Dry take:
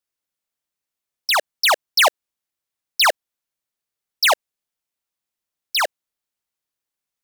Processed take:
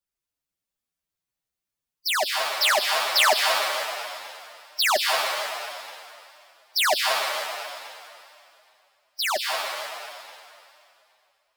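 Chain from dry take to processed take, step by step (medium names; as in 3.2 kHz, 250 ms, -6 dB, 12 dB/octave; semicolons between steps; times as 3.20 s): plate-style reverb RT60 1.6 s, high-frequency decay 1×, pre-delay 90 ms, DRR 2 dB; time stretch by phase-locked vocoder 1.6×; bass shelf 150 Hz +11.5 dB; trim -4 dB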